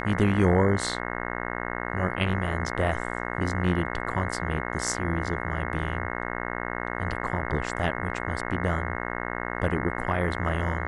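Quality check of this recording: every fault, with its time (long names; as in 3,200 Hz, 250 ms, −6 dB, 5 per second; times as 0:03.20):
mains buzz 60 Hz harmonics 36 −32 dBFS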